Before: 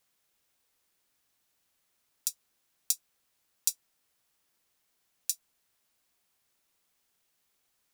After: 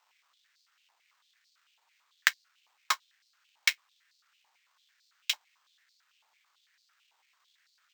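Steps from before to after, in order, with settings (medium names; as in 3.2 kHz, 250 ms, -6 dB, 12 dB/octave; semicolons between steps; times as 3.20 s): sample-rate reducer 11 kHz, jitter 0%; half-wave rectifier; step-sequenced high-pass 9 Hz 870–4400 Hz; trim +5 dB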